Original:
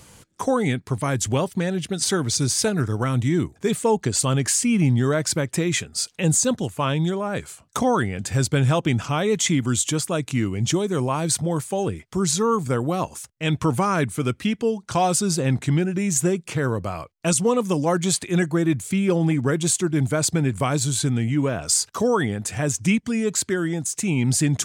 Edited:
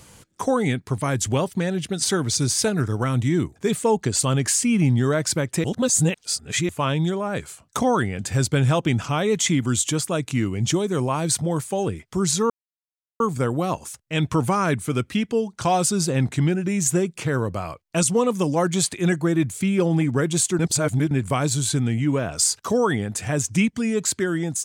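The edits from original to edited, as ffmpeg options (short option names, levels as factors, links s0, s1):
-filter_complex "[0:a]asplit=6[s0][s1][s2][s3][s4][s5];[s0]atrim=end=5.642[s6];[s1]atrim=start=5.638:end=6.692,asetpts=PTS-STARTPTS,areverse[s7];[s2]atrim=start=6.688:end=12.5,asetpts=PTS-STARTPTS,afade=t=out:st=5.808:d=0.004:c=hsin,apad=pad_dur=0.7[s8];[s3]atrim=start=12.5:end=19.892,asetpts=PTS-STARTPTS,afade=t=in:d=0.004:c=hsin[s9];[s4]atrim=start=19.888:end=20.412,asetpts=PTS-STARTPTS,areverse[s10];[s5]atrim=start=20.408[s11];[s6][s7]acrossfade=d=0.004:c1=hsin:c2=hsin[s12];[s8][s9]concat=n=2:v=0:a=1[s13];[s12][s13]acrossfade=d=0.004:c1=hsin:c2=hsin[s14];[s14][s10]acrossfade=d=0.004:c1=hsin:c2=hsin[s15];[s15][s11]acrossfade=d=0.004:c1=hsin:c2=hsin"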